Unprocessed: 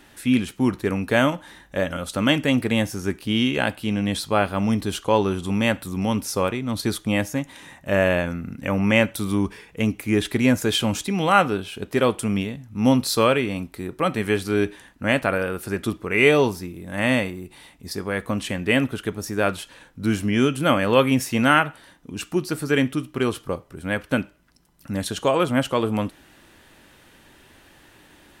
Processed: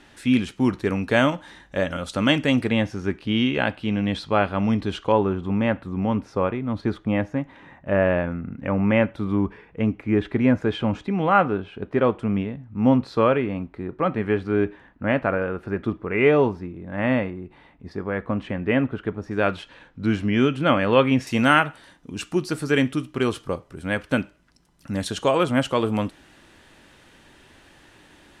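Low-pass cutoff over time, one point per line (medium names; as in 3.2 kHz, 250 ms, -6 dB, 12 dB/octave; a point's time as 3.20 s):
6.8 kHz
from 2.70 s 3.4 kHz
from 5.12 s 1.7 kHz
from 19.31 s 3.5 kHz
from 21.27 s 8.7 kHz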